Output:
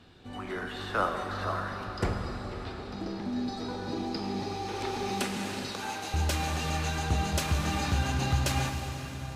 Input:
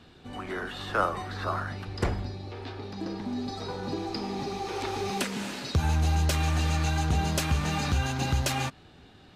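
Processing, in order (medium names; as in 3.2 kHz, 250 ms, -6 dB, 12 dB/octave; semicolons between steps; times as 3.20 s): 5.68–6.14 s: high-pass 580 Hz 12 dB/octave; plate-style reverb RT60 5 s, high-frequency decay 0.8×, DRR 3.5 dB; trim -2.5 dB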